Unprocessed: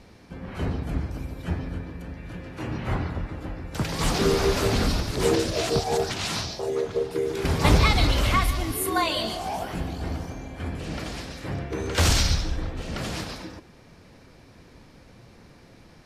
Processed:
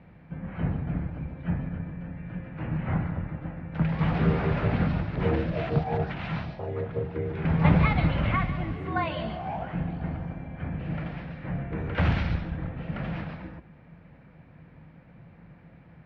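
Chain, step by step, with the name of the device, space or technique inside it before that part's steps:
sub-octave bass pedal (sub-octave generator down 2 octaves, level +2 dB; loudspeaker in its box 72–2,400 Hz, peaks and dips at 160 Hz +10 dB, 280 Hz −3 dB, 400 Hz −8 dB, 1,100 Hz −3 dB)
level −2.5 dB

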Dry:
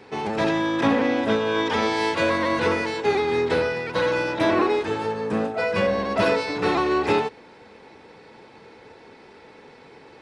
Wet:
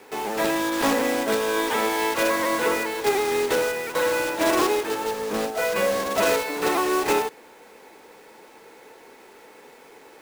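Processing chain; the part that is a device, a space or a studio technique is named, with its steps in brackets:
early digital voice recorder (band-pass filter 300–3,400 Hz; one scale factor per block 3 bits)

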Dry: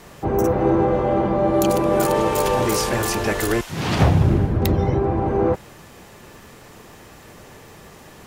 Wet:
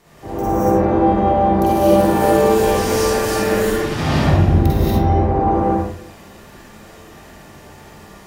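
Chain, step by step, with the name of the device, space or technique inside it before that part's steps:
0:01.42–0:02.06: notch filter 7,000 Hz, Q 6.9
bathroom (convolution reverb RT60 0.60 s, pre-delay 43 ms, DRR −4 dB)
reverb whose tail is shaped and stops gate 260 ms rising, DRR −7 dB
level −10.5 dB

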